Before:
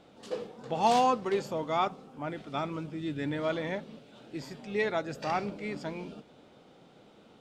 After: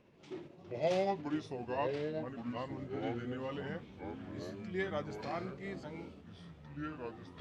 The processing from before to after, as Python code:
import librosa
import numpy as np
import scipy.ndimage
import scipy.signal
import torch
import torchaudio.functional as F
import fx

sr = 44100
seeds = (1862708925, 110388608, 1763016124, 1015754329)

y = fx.pitch_glide(x, sr, semitones=-5.5, runs='ending unshifted')
y = fx.echo_pitch(y, sr, ms=793, semitones=-4, count=3, db_per_echo=-6.0)
y = y * 10.0 ** (-7.0 / 20.0)